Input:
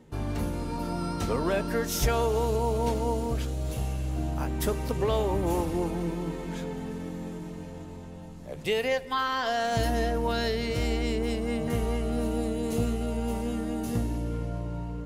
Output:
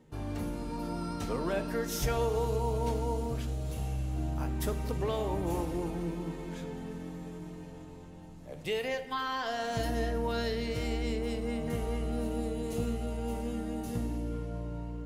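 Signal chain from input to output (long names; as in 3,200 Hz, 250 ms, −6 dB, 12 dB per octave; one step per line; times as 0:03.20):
rectangular room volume 840 cubic metres, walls mixed, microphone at 0.52 metres
level −6 dB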